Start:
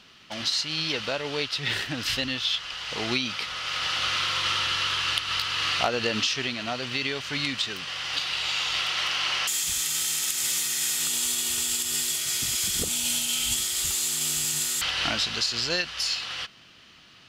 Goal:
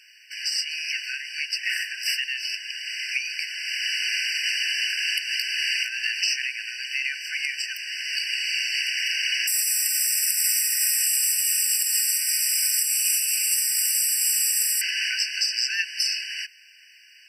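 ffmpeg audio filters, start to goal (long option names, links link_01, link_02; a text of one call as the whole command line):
ffmpeg -i in.wav -af "highshelf=frequency=8600:gain=10,afftfilt=real='re*eq(mod(floor(b*sr/1024/1500),2),1)':imag='im*eq(mod(floor(b*sr/1024/1500),2),1)':win_size=1024:overlap=0.75,volume=3.5dB" out.wav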